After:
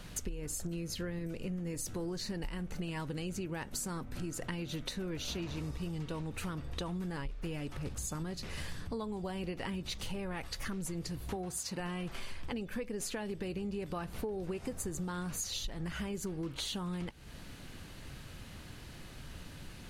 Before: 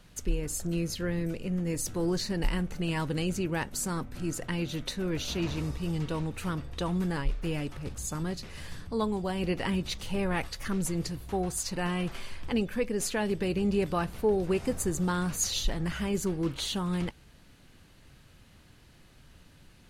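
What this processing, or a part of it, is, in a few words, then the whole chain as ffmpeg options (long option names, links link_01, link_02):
serial compression, leveller first: -filter_complex "[0:a]acompressor=threshold=-31dB:ratio=2,acompressor=threshold=-45dB:ratio=5,asettb=1/sr,asplit=3[link_01][link_02][link_03];[link_01]atrim=end=11.364[link_04];[link_02]atrim=start=11.36:end=11.8,asetpts=PTS-STARTPTS,afade=type=in:duration=0.004:curve=qsin,afade=type=out:start_time=0.436:duration=0.004:curve=qsin,highpass=82[link_05];[link_03]atrim=start=11.796[link_06];[link_04][link_05]acrossfade=duration=0.004:curve1=hsin:curve2=qsin[link_07];[link_07][link_06]acrossfade=duration=0.004:curve1=qsin:curve2=hsin,volume=8dB"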